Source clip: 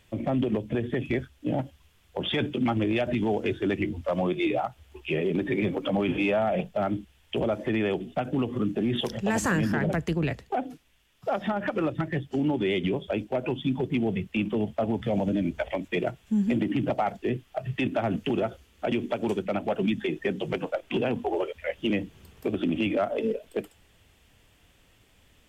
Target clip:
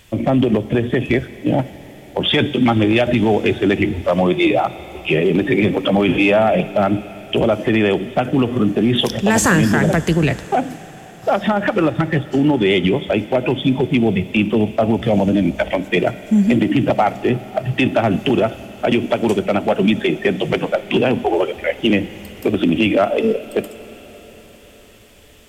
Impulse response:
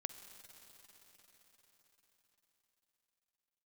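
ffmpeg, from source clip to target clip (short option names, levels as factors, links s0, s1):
-filter_complex "[0:a]asplit=2[s0][s1];[1:a]atrim=start_sample=2205,highshelf=f=3000:g=9.5[s2];[s1][s2]afir=irnorm=-1:irlink=0,volume=0.891[s3];[s0][s3]amix=inputs=2:normalize=0,volume=2.11"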